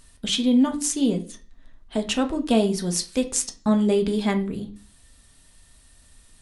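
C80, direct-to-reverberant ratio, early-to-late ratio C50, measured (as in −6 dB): 19.5 dB, 4.0 dB, 14.0 dB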